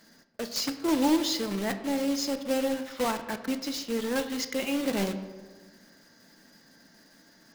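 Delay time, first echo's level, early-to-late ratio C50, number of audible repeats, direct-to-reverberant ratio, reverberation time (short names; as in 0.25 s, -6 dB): none, none, 11.0 dB, none, 8.0 dB, 1.4 s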